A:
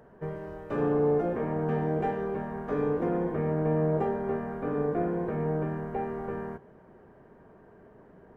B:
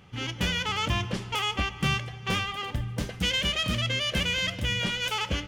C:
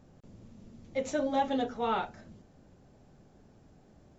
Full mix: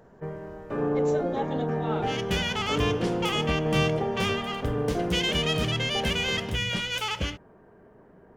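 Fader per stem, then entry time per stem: 0.0, −0.5, −4.0 decibels; 0.00, 1.90, 0.00 seconds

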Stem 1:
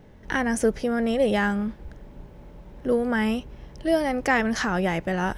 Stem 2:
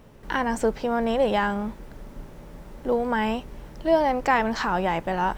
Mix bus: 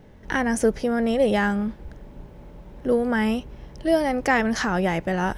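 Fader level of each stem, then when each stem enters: +1.0, −20.0 decibels; 0.00, 0.00 seconds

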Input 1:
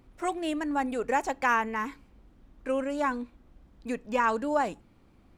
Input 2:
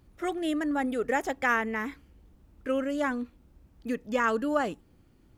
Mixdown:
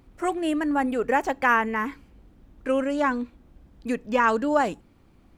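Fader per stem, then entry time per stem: +1.5, −3.5 decibels; 0.00, 0.00 seconds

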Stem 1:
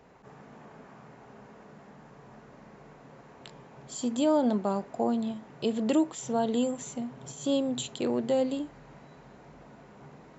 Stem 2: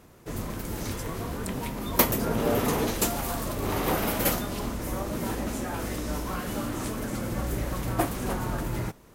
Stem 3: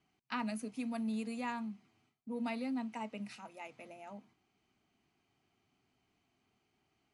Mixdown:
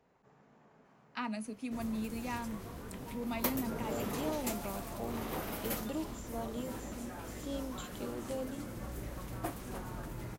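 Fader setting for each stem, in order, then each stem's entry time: −13.5, −12.5, −0.5 decibels; 0.00, 1.45, 0.85 seconds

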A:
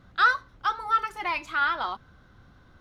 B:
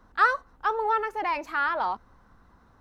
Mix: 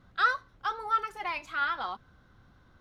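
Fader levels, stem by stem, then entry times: −5.0, −15.5 decibels; 0.00, 0.00 seconds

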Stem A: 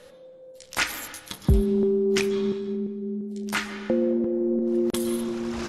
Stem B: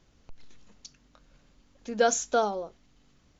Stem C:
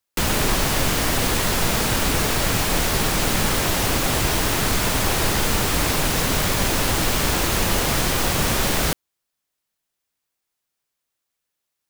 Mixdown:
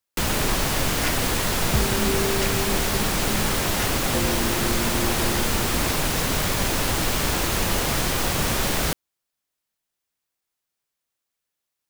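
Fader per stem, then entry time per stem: −5.5 dB, muted, −2.5 dB; 0.25 s, muted, 0.00 s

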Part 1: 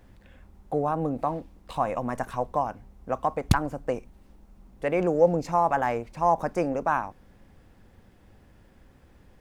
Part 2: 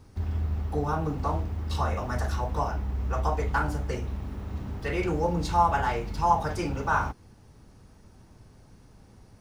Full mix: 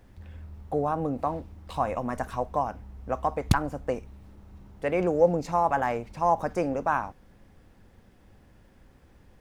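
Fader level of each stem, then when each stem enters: −1.0, −16.0 decibels; 0.00, 0.00 seconds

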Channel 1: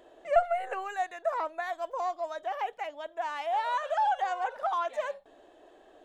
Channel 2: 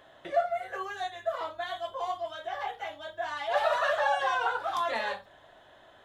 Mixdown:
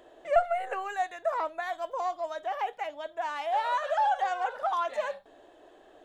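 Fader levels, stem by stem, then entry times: +1.0, −13.5 decibels; 0.00, 0.00 seconds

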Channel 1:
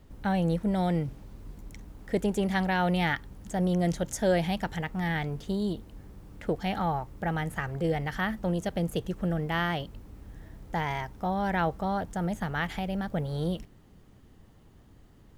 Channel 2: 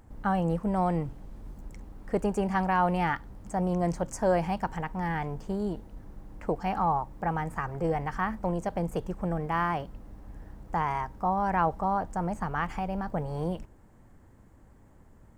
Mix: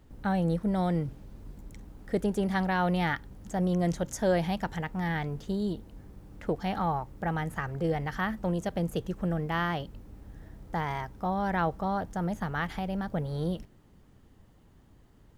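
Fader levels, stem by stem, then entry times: −3.5, −10.0 decibels; 0.00, 0.00 seconds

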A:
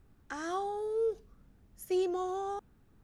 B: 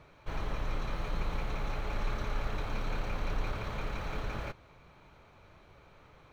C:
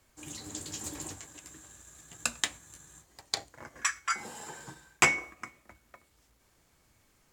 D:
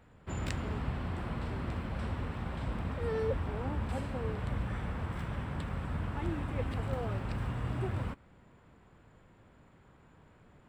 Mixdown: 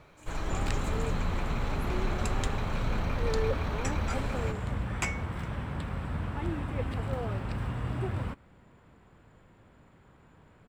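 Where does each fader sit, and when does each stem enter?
−9.0, +1.5, −10.5, +2.0 decibels; 0.00, 0.00, 0.00, 0.20 seconds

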